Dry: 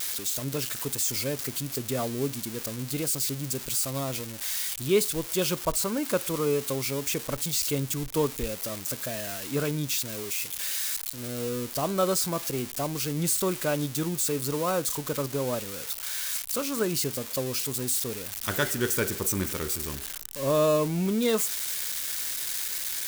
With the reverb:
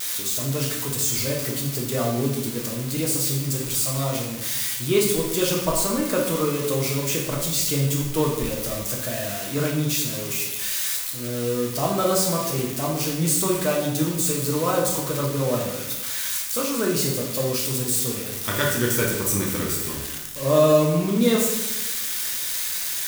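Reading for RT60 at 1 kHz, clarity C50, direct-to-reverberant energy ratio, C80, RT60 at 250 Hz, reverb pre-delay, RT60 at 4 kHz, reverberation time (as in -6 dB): 0.90 s, 3.5 dB, -2.0 dB, 6.5 dB, 1.2 s, 6 ms, 0.80 s, 1.0 s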